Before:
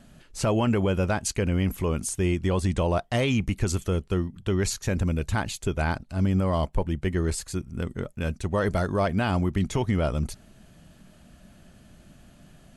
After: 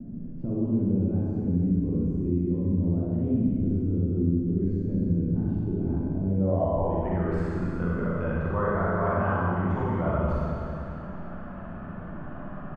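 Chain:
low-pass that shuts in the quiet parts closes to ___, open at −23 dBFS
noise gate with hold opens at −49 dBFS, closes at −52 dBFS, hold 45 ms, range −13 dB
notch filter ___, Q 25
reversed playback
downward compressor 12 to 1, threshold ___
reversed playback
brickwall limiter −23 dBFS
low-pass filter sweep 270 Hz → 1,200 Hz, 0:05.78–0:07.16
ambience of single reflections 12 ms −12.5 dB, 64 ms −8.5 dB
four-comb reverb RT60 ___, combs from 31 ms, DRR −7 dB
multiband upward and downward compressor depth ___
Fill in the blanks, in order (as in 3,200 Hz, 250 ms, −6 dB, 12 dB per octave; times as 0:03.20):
2,600 Hz, 4,000 Hz, −31 dBFS, 2.2 s, 40%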